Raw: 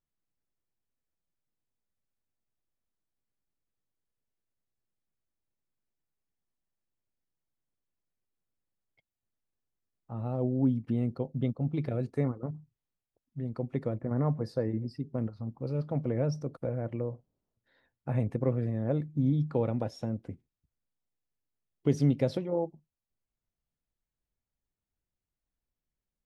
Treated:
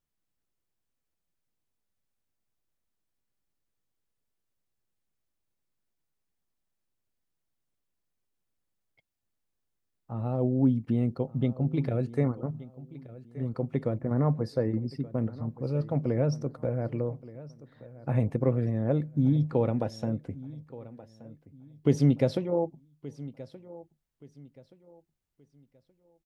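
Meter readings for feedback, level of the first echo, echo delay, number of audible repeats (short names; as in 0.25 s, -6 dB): 31%, -18.0 dB, 1.175 s, 2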